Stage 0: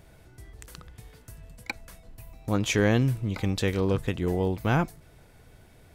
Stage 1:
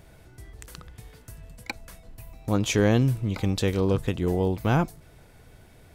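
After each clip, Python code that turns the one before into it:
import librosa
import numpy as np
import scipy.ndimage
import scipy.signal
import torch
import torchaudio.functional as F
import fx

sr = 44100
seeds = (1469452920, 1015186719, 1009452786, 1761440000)

y = fx.dynamic_eq(x, sr, hz=1900.0, q=1.5, threshold_db=-44.0, ratio=4.0, max_db=-5)
y = y * 10.0 ** (2.0 / 20.0)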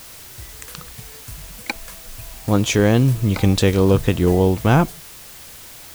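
y = fx.noise_reduce_blind(x, sr, reduce_db=8)
y = fx.rider(y, sr, range_db=10, speed_s=0.5)
y = fx.dmg_noise_colour(y, sr, seeds[0], colour='white', level_db=-48.0)
y = y * 10.0 ** (8.0 / 20.0)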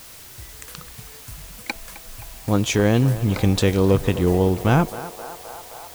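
y = fx.echo_banded(x, sr, ms=261, feedback_pct=83, hz=860.0, wet_db=-11.5)
y = y * 10.0 ** (-2.5 / 20.0)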